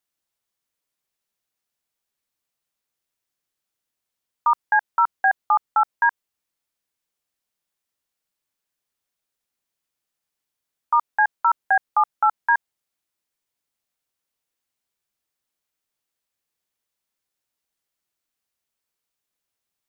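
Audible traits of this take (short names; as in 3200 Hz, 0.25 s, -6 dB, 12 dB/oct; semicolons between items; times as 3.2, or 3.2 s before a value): noise floor -84 dBFS; spectral tilt +9.0 dB/oct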